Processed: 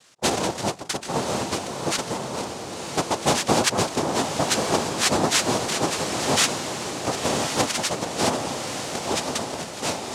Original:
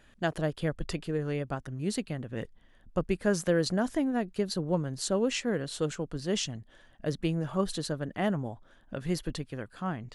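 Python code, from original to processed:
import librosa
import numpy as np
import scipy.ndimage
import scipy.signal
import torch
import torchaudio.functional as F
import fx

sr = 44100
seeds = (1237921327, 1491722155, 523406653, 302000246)

p1 = fx.tilt_eq(x, sr, slope=2.0)
p2 = fx.spec_repair(p1, sr, seeds[0], start_s=0.3, length_s=0.73, low_hz=520.0, high_hz=1100.0, source='both')
p3 = fx.peak_eq(p2, sr, hz=290.0, db=-5.0, octaves=0.77)
p4 = fx.quant_dither(p3, sr, seeds[1], bits=8, dither='none')
p5 = p3 + (p4 * 10.0 ** (-6.5 / 20.0))
p6 = fx.noise_vocoder(p5, sr, seeds[2], bands=2)
p7 = p6 + fx.echo_diffused(p6, sr, ms=1052, feedback_pct=50, wet_db=-5.5, dry=0)
y = p7 * 10.0 ** (5.5 / 20.0)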